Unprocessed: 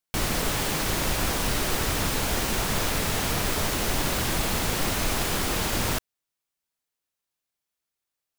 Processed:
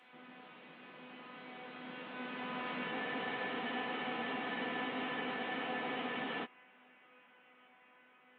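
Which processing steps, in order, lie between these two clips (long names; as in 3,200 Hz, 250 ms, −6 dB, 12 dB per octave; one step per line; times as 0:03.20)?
linear delta modulator 16 kbit/s, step −27 dBFS
source passing by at 0:02.99, 26 m/s, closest 3.7 metres
Butterworth high-pass 160 Hz 48 dB per octave
downward compressor 6 to 1, threshold −37 dBFS, peak gain reduction 10.5 dB
tuned comb filter 250 Hz, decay 0.55 s, harmonics all, mix 90%
frozen spectrum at 0:02.92, 3.53 s
level +14 dB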